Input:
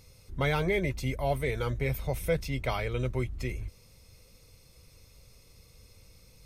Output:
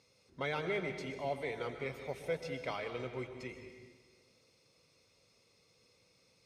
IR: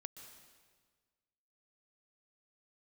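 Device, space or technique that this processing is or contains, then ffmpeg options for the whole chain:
supermarket ceiling speaker: -filter_complex "[0:a]highpass=230,lowpass=6.1k[a];[1:a]atrim=start_sample=2205[b];[a][b]afir=irnorm=-1:irlink=0,volume=-1.5dB"

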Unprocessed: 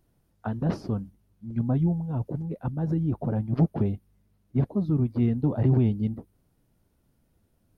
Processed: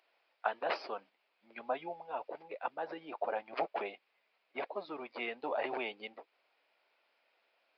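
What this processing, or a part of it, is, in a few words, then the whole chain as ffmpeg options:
musical greeting card: -af "aresample=11025,aresample=44100,highpass=f=590:w=0.5412,highpass=f=590:w=1.3066,equalizer=f=2.4k:t=o:w=0.58:g=11,volume=4dB"

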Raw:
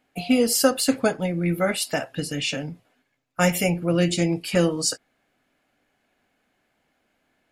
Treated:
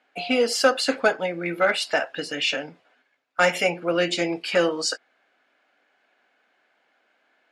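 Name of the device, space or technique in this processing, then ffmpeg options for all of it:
intercom: -af "highpass=460,lowpass=4.5k,equalizer=f=1.5k:t=o:w=0.26:g=5,asoftclip=type=tanh:threshold=-12.5dB,volume=4.5dB"

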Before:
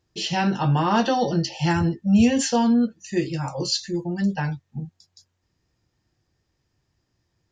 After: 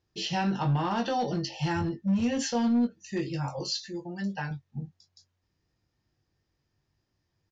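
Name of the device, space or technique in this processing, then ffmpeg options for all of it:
limiter into clipper: -filter_complex "[0:a]asettb=1/sr,asplit=3[a][b][c];[a]atrim=end=3.594[d];[b]atrim=start=3.59:end=4.51,asetpts=PTS-STARTPTS,afade=t=in:d=0.004:c=qsin,afade=t=out:st=0.916:d=0.004:c=qsin,lowshelf=f=280:g=-9[e];[c]atrim=start=4.506[f];[d][e]acrossfade=d=0.004:c1=hsin:c2=qsin[g];[g][f]acrossfade=d=0.004:c1=qsin:c2=hsin,alimiter=limit=-15dB:level=0:latency=1:release=109,asoftclip=type=hard:threshold=-17.5dB,lowpass=f=6.6k:w=0.5412,lowpass=f=6.6k:w=1.3066,asplit=2[h][i];[i]adelay=21,volume=-8.5dB[j];[h][j]amix=inputs=2:normalize=0,volume=-5.5dB"

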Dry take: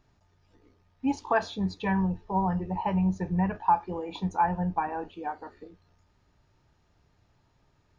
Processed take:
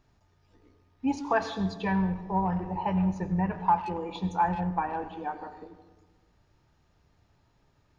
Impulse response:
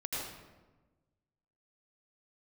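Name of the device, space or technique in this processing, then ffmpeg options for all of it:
saturated reverb return: -filter_complex "[0:a]asplit=2[a][b];[1:a]atrim=start_sample=2205[c];[b][c]afir=irnorm=-1:irlink=0,asoftclip=type=tanh:threshold=-20dB,volume=-10dB[d];[a][d]amix=inputs=2:normalize=0,volume=-2dB"

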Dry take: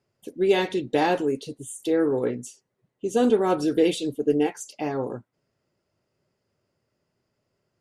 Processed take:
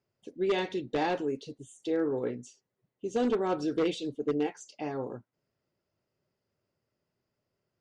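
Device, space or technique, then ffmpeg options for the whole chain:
synthesiser wavefolder: -af "aeval=exprs='0.211*(abs(mod(val(0)/0.211+3,4)-2)-1)':c=same,lowpass=f=6.8k:w=0.5412,lowpass=f=6.8k:w=1.3066,volume=-7dB"

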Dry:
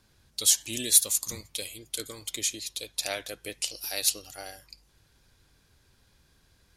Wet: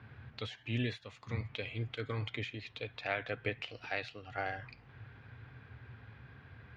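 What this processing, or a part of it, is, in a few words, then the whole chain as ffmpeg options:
bass amplifier: -af "acompressor=threshold=-42dB:ratio=3,highpass=f=81:w=0.5412,highpass=f=81:w=1.3066,equalizer=f=120:t=q:w=4:g=10,equalizer=f=170:t=q:w=4:g=-9,equalizer=f=340:t=q:w=4:g=-9,equalizer=f=570:t=q:w=4:g=-7,equalizer=f=970:t=q:w=4:g=-4,lowpass=f=2.3k:w=0.5412,lowpass=f=2.3k:w=1.3066,volume=13.5dB"

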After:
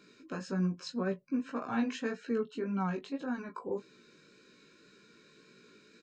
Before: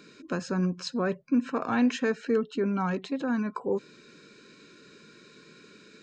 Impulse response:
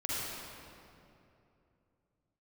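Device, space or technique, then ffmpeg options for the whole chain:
double-tracked vocal: -filter_complex "[0:a]asplit=2[a][b];[b]adelay=21,volume=-11dB[c];[a][c]amix=inputs=2:normalize=0,flanger=delay=15.5:depth=3.7:speed=1.8,volume=-4.5dB"

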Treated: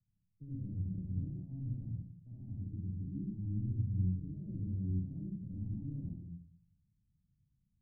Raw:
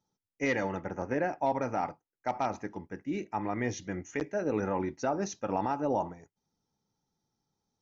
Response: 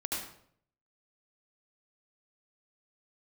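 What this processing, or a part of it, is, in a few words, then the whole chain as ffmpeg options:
club heard from the street: -filter_complex "[0:a]alimiter=level_in=5dB:limit=-24dB:level=0:latency=1:release=13,volume=-5dB,lowpass=f=140:w=0.5412,lowpass=f=140:w=1.3066[a];[1:a]atrim=start_sample=2205[b];[a][b]afir=irnorm=-1:irlink=0,volume=9.5dB"

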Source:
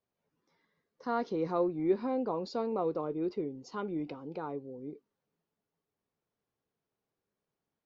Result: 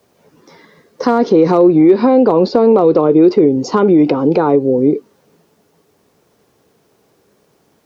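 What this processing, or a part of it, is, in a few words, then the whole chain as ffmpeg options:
mastering chain: -filter_complex "[0:a]asettb=1/sr,asplit=3[a][b][c];[a]atrim=end=1.634[d];[b]atrim=start=1.63:end=3.11,asetpts=PTS-STARTPTS,afade=t=in:d=0.004:c=qsin,afade=t=out:st=1.476:d=0.004:c=qsin,lowpass=f=5.5k:w=0.5412,lowpass=f=5.5k:w=1.3066[e];[c]atrim=start=3.106[f];[d][e]acrossfade=d=0.004:c1=hsin:c2=qsin[g];[g][f]acrossfade=d=0.004:c1=qsin:c2=hsin,highpass=43,equalizer=f=5.8k:t=o:w=0.77:g=3,acrossover=split=390|2000[h][i][j];[h]acompressor=threshold=-37dB:ratio=4[k];[i]acompressor=threshold=-36dB:ratio=4[l];[j]acompressor=threshold=-58dB:ratio=4[m];[k][l][m]amix=inputs=3:normalize=0,acompressor=threshold=-44dB:ratio=1.5,asoftclip=type=hard:threshold=-31.5dB,alimiter=level_in=34.5dB:limit=-1dB:release=50:level=0:latency=1,equalizer=f=400:t=o:w=1.8:g=5,volume=-5.5dB"

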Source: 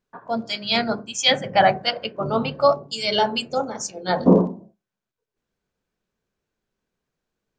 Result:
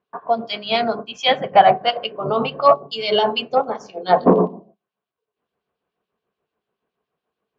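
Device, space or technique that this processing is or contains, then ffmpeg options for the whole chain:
guitar amplifier with harmonic tremolo: -filter_complex "[0:a]acrossover=split=2400[a][b];[a]aeval=exprs='val(0)*(1-0.7/2+0.7/2*cos(2*PI*7*n/s))':c=same[c];[b]aeval=exprs='val(0)*(1-0.7/2-0.7/2*cos(2*PI*7*n/s))':c=same[d];[c][d]amix=inputs=2:normalize=0,asoftclip=type=tanh:threshold=-9.5dB,highpass=92,equalizer=f=110:t=q:w=4:g=-6,equalizer=f=430:t=q:w=4:g=8,equalizer=f=710:t=q:w=4:g=9,equalizer=f=1.1k:t=q:w=4:g=10,equalizer=f=2.9k:t=q:w=4:g=5,lowpass=f=4.2k:w=0.5412,lowpass=f=4.2k:w=1.3066,volume=2.5dB"

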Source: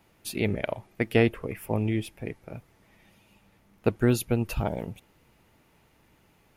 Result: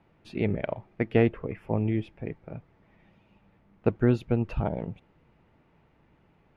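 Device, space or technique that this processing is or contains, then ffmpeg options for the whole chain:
phone in a pocket: -af "lowpass=3.4k,equalizer=f=160:t=o:w=0.24:g=4.5,highshelf=f=2.4k:g=-9.5"

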